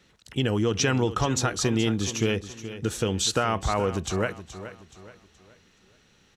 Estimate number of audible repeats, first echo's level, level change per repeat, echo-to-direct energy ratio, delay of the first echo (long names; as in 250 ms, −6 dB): 3, −13.0 dB, −8.5 dB, −12.5 dB, 424 ms